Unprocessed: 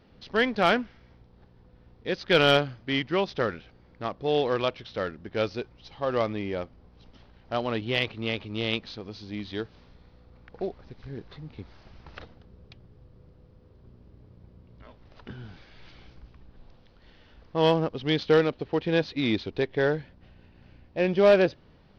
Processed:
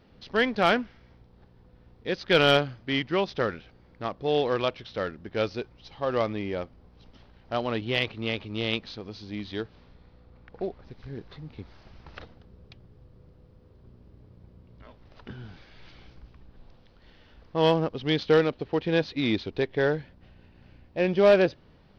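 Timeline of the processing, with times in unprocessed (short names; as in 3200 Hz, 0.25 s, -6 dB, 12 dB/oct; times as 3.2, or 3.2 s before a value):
9.62–10.85 air absorption 78 m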